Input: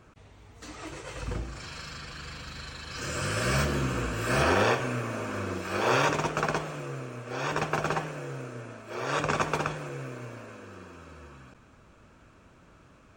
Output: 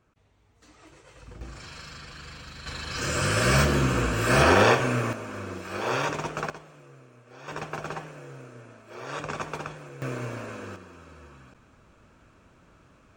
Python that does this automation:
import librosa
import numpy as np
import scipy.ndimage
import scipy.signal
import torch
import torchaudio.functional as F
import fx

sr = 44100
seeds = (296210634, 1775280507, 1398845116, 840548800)

y = fx.gain(x, sr, db=fx.steps((0.0, -12.0), (1.41, -2.0), (2.66, 5.5), (5.13, -3.0), (6.5, -14.0), (7.48, -6.0), (10.02, 7.0), (10.76, -1.0)))